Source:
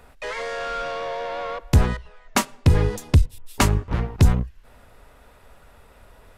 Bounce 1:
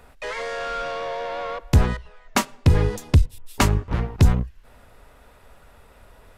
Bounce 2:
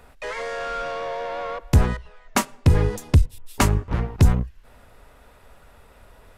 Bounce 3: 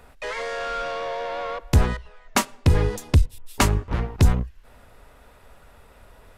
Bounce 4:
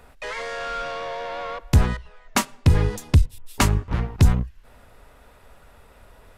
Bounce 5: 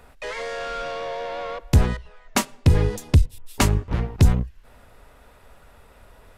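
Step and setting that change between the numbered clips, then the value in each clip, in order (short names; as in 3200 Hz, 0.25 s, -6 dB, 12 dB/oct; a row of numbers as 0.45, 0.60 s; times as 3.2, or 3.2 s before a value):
dynamic EQ, frequency: 9900, 3800, 140, 480, 1200 Hz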